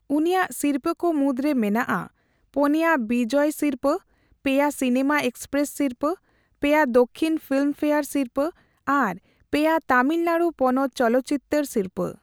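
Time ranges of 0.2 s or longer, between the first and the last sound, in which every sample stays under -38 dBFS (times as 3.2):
2.07–2.54
3.98–4.45
6.15–6.62
8.5–8.87
9.17–9.53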